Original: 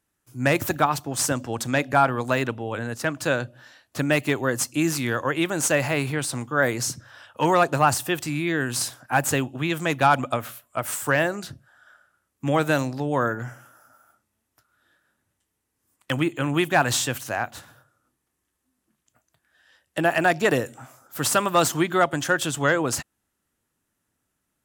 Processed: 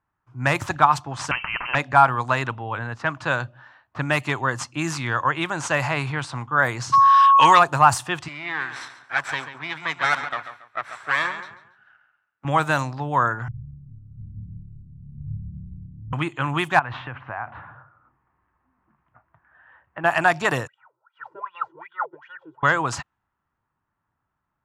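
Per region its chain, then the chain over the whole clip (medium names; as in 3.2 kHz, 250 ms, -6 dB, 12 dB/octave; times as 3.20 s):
1.31–1.75 s: frequency inversion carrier 2.9 kHz + spectrum-flattening compressor 2:1
6.92–7.58 s: frequency weighting D + whistle 1.1 kHz -24 dBFS + level flattener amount 50%
8.28–12.45 s: comb filter that takes the minimum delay 0.52 ms + high-pass 940 Hz 6 dB/octave + feedback delay 140 ms, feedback 32%, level -10.5 dB
13.48–16.13 s: jump at every zero crossing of -24 dBFS + inverse Chebyshev low-pass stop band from 700 Hz, stop band 70 dB + flutter echo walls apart 4.8 m, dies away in 1.1 s
16.79–20.04 s: companding laws mixed up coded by mu + low-pass 2.5 kHz 24 dB/octave + compression, threshold -28 dBFS
20.67–22.63 s: comb 2.1 ms, depth 92% + wah-wah 2.6 Hz 320–3300 Hz, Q 15
whole clip: treble shelf 10 kHz -10.5 dB; level-controlled noise filter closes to 1.6 kHz, open at -16 dBFS; graphic EQ 125/250/500/1000/8000 Hz +3/-6/-7/+10/+3 dB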